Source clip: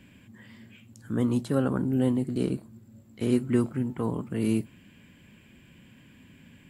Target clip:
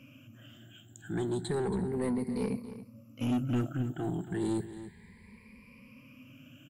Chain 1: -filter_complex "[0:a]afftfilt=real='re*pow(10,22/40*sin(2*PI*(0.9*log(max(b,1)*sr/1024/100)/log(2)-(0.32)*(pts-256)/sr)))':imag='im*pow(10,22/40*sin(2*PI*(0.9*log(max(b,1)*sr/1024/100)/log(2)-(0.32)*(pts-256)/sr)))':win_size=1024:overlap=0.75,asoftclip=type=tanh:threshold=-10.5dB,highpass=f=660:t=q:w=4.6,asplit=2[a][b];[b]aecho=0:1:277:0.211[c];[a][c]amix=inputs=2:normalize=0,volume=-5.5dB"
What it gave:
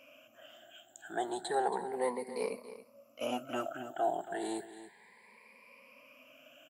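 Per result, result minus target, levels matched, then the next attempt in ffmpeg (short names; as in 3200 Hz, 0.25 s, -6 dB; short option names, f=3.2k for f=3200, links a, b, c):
soft clip: distortion -10 dB; 500 Hz band +3.5 dB
-filter_complex "[0:a]afftfilt=real='re*pow(10,22/40*sin(2*PI*(0.9*log(max(b,1)*sr/1024/100)/log(2)-(0.32)*(pts-256)/sr)))':imag='im*pow(10,22/40*sin(2*PI*(0.9*log(max(b,1)*sr/1024/100)/log(2)-(0.32)*(pts-256)/sr)))':win_size=1024:overlap=0.75,asoftclip=type=tanh:threshold=-19.5dB,highpass=f=660:t=q:w=4.6,asplit=2[a][b];[b]aecho=0:1:277:0.211[c];[a][c]amix=inputs=2:normalize=0,volume=-5.5dB"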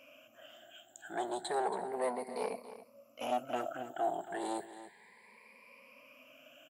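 500 Hz band +3.0 dB
-filter_complex "[0:a]afftfilt=real='re*pow(10,22/40*sin(2*PI*(0.9*log(max(b,1)*sr/1024/100)/log(2)-(0.32)*(pts-256)/sr)))':imag='im*pow(10,22/40*sin(2*PI*(0.9*log(max(b,1)*sr/1024/100)/log(2)-(0.32)*(pts-256)/sr)))':win_size=1024:overlap=0.75,asoftclip=type=tanh:threshold=-19.5dB,asplit=2[a][b];[b]aecho=0:1:277:0.211[c];[a][c]amix=inputs=2:normalize=0,volume=-5.5dB"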